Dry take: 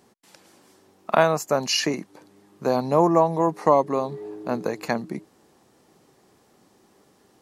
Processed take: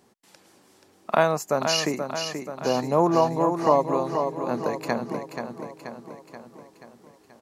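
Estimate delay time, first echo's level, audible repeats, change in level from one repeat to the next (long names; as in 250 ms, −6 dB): 481 ms, −7.0 dB, 6, −5.0 dB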